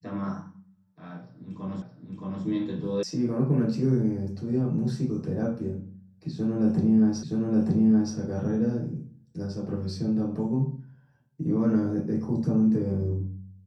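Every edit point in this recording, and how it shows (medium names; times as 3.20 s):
1.82 s: repeat of the last 0.62 s
3.03 s: sound stops dead
7.23 s: repeat of the last 0.92 s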